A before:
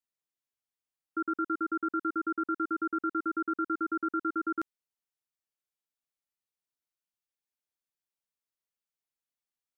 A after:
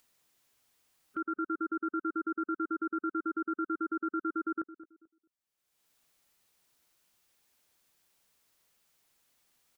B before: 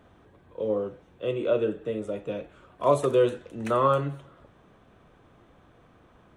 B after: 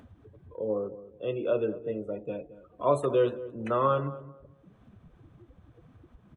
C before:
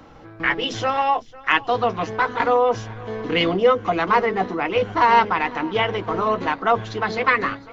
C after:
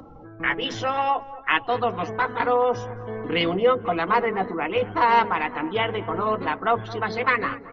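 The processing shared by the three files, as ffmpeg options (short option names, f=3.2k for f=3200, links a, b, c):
-filter_complex "[0:a]afftdn=nr=23:nf=-43,acompressor=mode=upward:threshold=-35dB:ratio=2.5,asplit=2[a][b];[b]adelay=219,lowpass=f=970:p=1,volume=-14.5dB,asplit=2[c][d];[d]adelay=219,lowpass=f=970:p=1,volume=0.29,asplit=2[e][f];[f]adelay=219,lowpass=f=970:p=1,volume=0.29[g];[a][c][e][g]amix=inputs=4:normalize=0,volume=-3dB"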